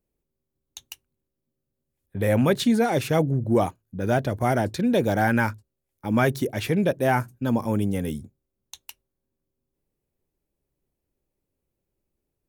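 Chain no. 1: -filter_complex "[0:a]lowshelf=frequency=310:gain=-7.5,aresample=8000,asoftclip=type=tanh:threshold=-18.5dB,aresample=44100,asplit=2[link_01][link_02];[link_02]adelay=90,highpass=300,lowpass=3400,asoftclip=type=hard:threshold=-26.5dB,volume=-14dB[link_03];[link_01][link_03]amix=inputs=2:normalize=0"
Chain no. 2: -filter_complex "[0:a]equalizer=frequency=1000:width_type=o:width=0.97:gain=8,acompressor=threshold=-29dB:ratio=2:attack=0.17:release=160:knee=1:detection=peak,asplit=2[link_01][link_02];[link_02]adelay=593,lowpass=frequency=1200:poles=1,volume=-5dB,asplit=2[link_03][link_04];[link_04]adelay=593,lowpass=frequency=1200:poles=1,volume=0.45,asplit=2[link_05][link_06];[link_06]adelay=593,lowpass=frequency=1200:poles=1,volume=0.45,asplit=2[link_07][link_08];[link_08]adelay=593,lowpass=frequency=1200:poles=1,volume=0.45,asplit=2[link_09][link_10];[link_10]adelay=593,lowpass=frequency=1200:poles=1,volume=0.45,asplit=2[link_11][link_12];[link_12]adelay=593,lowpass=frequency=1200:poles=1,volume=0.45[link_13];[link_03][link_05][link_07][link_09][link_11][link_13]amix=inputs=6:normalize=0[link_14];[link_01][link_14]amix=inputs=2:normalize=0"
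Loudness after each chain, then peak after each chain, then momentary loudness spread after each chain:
−28.5, −30.0 LKFS; −17.5, −15.0 dBFS; 15, 17 LU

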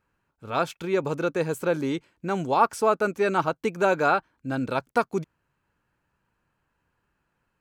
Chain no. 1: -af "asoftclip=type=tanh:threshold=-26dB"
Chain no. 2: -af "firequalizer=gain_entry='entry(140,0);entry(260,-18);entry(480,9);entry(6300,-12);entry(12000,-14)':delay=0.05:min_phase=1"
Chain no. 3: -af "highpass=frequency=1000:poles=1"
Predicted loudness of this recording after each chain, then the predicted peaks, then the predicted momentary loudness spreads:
−32.0, −19.5, −30.5 LKFS; −26.0, −1.5, −11.5 dBFS; 6, 12, 11 LU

